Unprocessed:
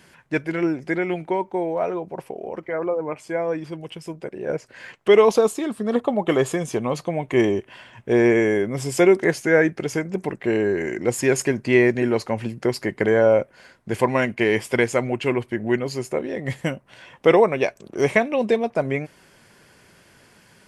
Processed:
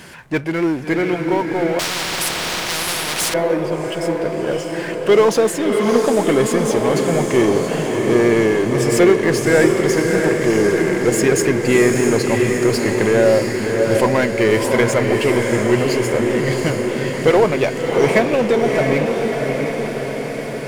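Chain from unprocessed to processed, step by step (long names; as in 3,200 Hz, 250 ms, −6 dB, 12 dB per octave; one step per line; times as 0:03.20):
power curve on the samples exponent 0.7
feedback delay with all-pass diffusion 671 ms, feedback 64%, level −3.5 dB
0:01.79–0:03.34: every bin compressed towards the loudest bin 10 to 1
level −1 dB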